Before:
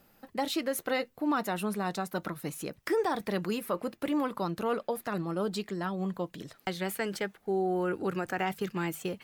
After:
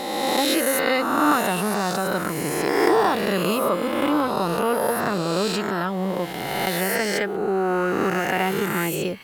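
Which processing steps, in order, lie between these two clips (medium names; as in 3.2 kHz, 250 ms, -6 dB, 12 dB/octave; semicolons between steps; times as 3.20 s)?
reverse spectral sustain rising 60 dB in 1.96 s; trim +6 dB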